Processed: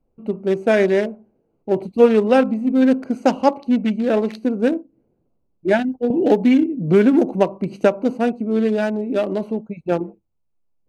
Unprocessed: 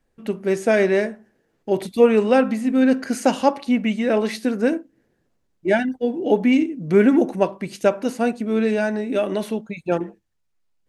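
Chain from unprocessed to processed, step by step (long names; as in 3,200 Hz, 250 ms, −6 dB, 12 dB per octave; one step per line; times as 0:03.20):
adaptive Wiener filter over 25 samples
0:06.10–0:08.18: multiband upward and downward compressor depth 70%
level +2 dB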